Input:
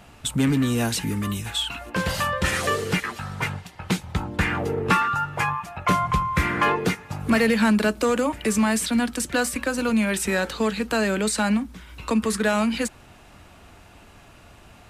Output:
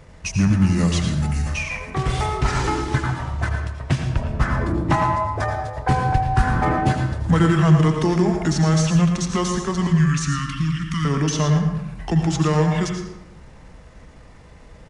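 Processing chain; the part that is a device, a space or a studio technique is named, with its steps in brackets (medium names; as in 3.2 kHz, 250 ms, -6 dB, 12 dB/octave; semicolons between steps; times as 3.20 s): 9.86–11.05 s: inverse Chebyshev band-stop 510–1100 Hz, stop band 40 dB; monster voice (pitch shift -5.5 st; bass shelf 240 Hz +7.5 dB; delay 112 ms -11.5 dB; reverberation RT60 0.90 s, pre-delay 76 ms, DRR 4.5 dB); trim -1.5 dB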